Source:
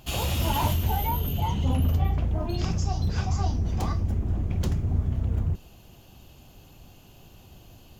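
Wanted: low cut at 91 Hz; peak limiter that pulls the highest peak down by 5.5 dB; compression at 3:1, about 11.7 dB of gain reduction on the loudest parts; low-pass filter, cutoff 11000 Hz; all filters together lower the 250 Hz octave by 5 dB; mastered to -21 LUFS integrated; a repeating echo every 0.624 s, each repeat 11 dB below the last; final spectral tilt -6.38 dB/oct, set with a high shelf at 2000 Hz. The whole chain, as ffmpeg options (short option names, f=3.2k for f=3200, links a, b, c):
-af "highpass=91,lowpass=11k,equalizer=f=250:t=o:g=-7,highshelf=f=2k:g=-7,acompressor=threshold=-41dB:ratio=3,alimiter=level_in=10dB:limit=-24dB:level=0:latency=1,volume=-10dB,aecho=1:1:624|1248|1872:0.282|0.0789|0.0221,volume=22dB"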